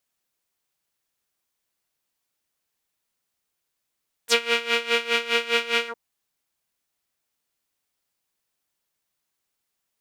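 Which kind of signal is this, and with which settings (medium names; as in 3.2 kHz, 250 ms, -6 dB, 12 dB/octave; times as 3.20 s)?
synth patch with tremolo A#4, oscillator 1 triangle, oscillator 2 saw, detune 25 cents, sub -11 dB, noise -21.5 dB, filter bandpass, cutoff 760 Hz, Q 2.6, filter envelope 4 oct, filter decay 0.06 s, filter sustain 45%, attack 43 ms, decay 0.07 s, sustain -5 dB, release 0.07 s, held 1.59 s, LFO 4.9 Hz, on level 17 dB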